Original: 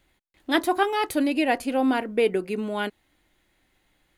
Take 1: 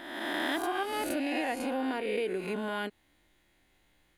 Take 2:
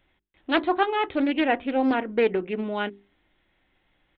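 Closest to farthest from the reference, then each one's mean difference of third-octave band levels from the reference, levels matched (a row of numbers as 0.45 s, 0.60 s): 2, 1; 5.0 dB, 7.0 dB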